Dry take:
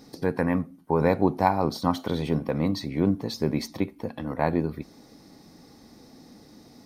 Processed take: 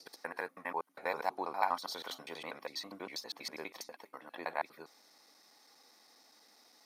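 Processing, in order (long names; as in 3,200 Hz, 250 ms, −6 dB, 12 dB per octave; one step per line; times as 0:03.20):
slices reordered back to front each 81 ms, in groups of 3
high-pass filter 930 Hz 12 dB per octave
level −4.5 dB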